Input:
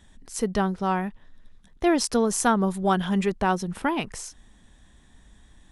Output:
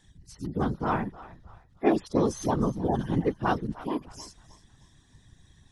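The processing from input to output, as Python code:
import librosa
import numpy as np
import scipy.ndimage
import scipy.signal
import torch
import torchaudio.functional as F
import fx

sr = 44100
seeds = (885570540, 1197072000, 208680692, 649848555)

y = fx.hpss_only(x, sr, part='harmonic')
y = fx.peak_eq(y, sr, hz=5200.0, db=8.0, octaves=0.92)
y = fx.echo_thinned(y, sr, ms=309, feedback_pct=37, hz=480.0, wet_db=-17.0)
y = fx.whisperise(y, sr, seeds[0])
y = y * librosa.db_to_amplitude(-2.5)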